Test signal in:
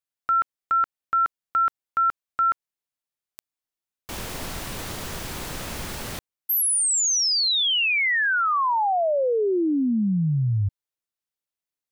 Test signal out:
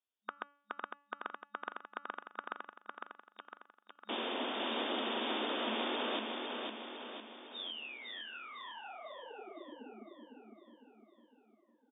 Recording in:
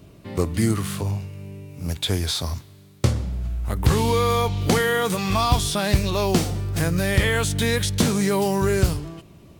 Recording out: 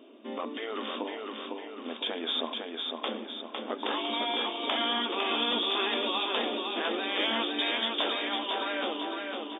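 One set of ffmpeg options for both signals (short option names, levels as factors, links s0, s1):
-filter_complex "[0:a]afftfilt=real='re*lt(hypot(re,im),0.251)':imag='im*lt(hypot(re,im),0.251)':win_size=1024:overlap=0.75,acrossover=split=1400[s0][s1];[s0]acontrast=87[s2];[s2][s1]amix=inputs=2:normalize=0,afftfilt=real='re*between(b*sr/4096,210,3700)':imag='im*between(b*sr/4096,210,3700)':win_size=4096:overlap=0.75,bandreject=f=286.1:t=h:w=4,bandreject=f=572.2:t=h:w=4,bandreject=f=858.3:t=h:w=4,bandreject=f=1144.4:t=h:w=4,bandreject=f=1430.5:t=h:w=4,bandreject=f=1716.6:t=h:w=4,bandreject=f=2002.7:t=h:w=4,bandreject=f=2288.8:t=h:w=4,bandreject=f=2574.9:t=h:w=4,bandreject=f=2861:t=h:w=4,bandreject=f=3147.1:t=h:w=4,aexciter=amount=3.9:drive=4.9:freq=2900,asplit=2[s3][s4];[s4]aecho=0:1:505|1010|1515|2020|2525|3030|3535:0.631|0.328|0.171|0.0887|0.0461|0.024|0.0125[s5];[s3][s5]amix=inputs=2:normalize=0,volume=0.422"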